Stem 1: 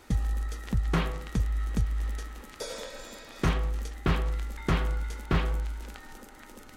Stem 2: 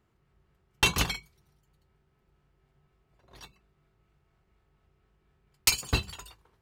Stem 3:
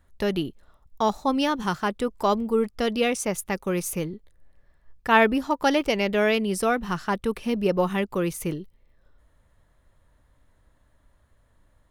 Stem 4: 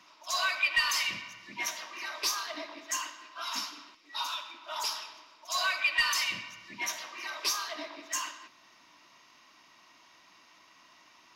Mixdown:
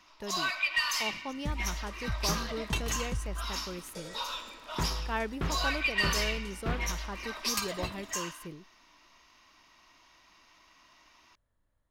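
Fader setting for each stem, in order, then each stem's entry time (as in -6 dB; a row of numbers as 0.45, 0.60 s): -7.5, -11.0, -15.5, -2.0 dB; 1.35, 1.90, 0.00, 0.00 s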